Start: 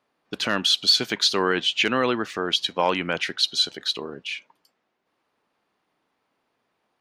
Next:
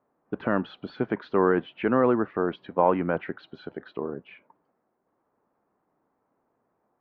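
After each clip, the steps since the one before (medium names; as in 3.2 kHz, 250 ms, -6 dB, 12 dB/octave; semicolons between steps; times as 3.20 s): Bessel low-pass 960 Hz, order 4; trim +3 dB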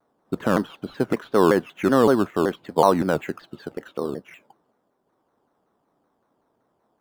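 in parallel at -7.5 dB: sample-and-hold 10×; on the sum: vibrato with a chosen wave saw down 5.3 Hz, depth 250 cents; trim +1.5 dB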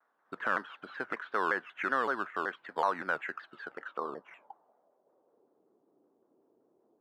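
compression 1.5:1, threshold -28 dBFS, peak gain reduction 6.5 dB; band-pass sweep 1.6 kHz -> 370 Hz, 3.61–5.63 s; trim +5 dB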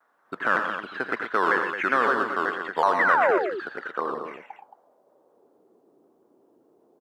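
painted sound fall, 2.99–3.38 s, 340–2100 Hz -29 dBFS; on a send: loudspeakers at several distances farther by 29 m -9 dB, 41 m -8 dB, 76 m -9 dB; on the sum: trim +7.5 dB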